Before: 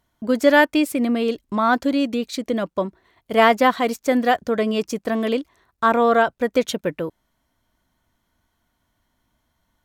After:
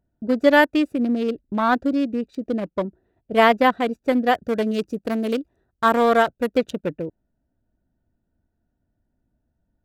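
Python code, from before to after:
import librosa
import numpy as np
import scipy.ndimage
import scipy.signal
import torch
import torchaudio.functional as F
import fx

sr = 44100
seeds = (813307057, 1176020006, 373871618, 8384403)

y = fx.wiener(x, sr, points=41)
y = fx.high_shelf(y, sr, hz=5000.0, db=11.0, at=(4.34, 6.57))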